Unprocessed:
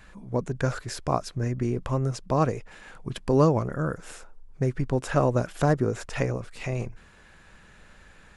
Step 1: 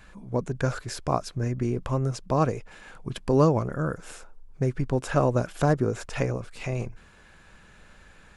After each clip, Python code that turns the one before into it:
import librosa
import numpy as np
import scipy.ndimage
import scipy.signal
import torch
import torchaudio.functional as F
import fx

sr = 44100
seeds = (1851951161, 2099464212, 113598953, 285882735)

y = fx.notch(x, sr, hz=1900.0, q=19.0)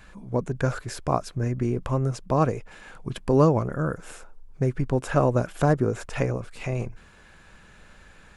y = fx.dynamic_eq(x, sr, hz=4900.0, q=1.0, threshold_db=-53.0, ratio=4.0, max_db=-4)
y = y * librosa.db_to_amplitude(1.5)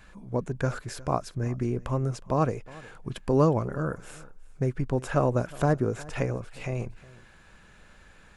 y = x + 10.0 ** (-21.5 / 20.0) * np.pad(x, (int(362 * sr / 1000.0), 0))[:len(x)]
y = y * librosa.db_to_amplitude(-3.0)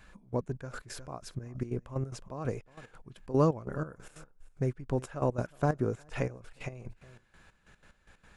y = fx.step_gate(x, sr, bpm=184, pattern='xx..x.x..x.xx..', floor_db=-12.0, edge_ms=4.5)
y = y * librosa.db_to_amplitude(-3.5)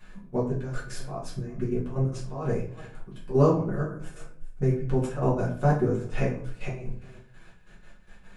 y = fx.room_shoebox(x, sr, seeds[0], volume_m3=46.0, walls='mixed', distance_m=1.4)
y = y * librosa.db_to_amplitude(-3.5)